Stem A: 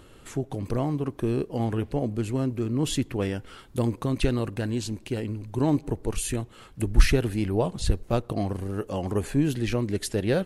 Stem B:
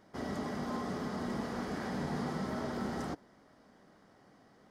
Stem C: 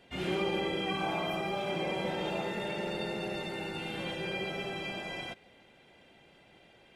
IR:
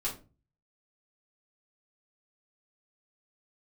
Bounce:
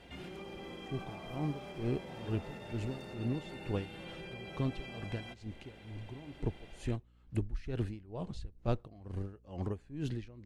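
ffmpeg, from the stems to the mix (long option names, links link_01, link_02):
-filter_complex "[0:a]lowpass=5600,aeval=exprs='val(0)*pow(10,-23*(0.5-0.5*cos(2*PI*2.2*n/s))/20)':channel_layout=same,adelay=550,volume=-8dB[link_01];[1:a]asoftclip=type=tanh:threshold=-37dB,highshelf=frequency=7100:gain=11,volume=-8.5dB[link_02];[2:a]acompressor=threshold=-49dB:ratio=2,volume=2.5dB[link_03];[link_02][link_03]amix=inputs=2:normalize=0,alimiter=level_in=14dB:limit=-24dB:level=0:latency=1:release=385,volume=-14dB,volume=0dB[link_04];[link_01][link_04]amix=inputs=2:normalize=0,aeval=exprs='val(0)+0.000398*(sin(2*PI*60*n/s)+sin(2*PI*2*60*n/s)/2+sin(2*PI*3*60*n/s)/3+sin(2*PI*4*60*n/s)/4+sin(2*PI*5*60*n/s)/5)':channel_layout=same,lowshelf=frequency=120:gain=7.5"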